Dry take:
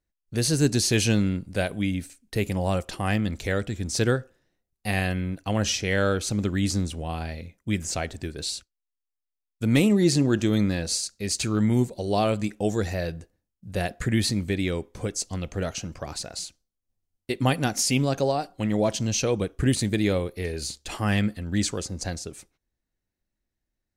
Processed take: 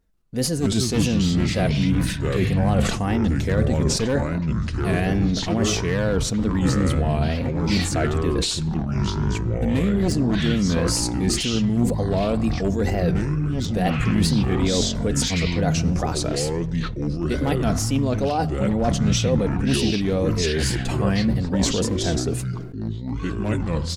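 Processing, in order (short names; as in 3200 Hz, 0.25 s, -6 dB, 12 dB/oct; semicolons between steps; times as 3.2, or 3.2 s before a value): one-sided fold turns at -16.5 dBFS; tilt shelf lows +4.5 dB, about 1300 Hz; comb 4.3 ms, depth 42%; reverse; compressor 6:1, threshold -29 dBFS, peak gain reduction 17.5 dB; reverse; wow and flutter 130 cents; on a send at -21 dB: reverb RT60 1.2 s, pre-delay 40 ms; on the sum: echoes that change speed 0.141 s, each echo -5 st, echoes 3; sustainer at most 57 dB/s; gain +8.5 dB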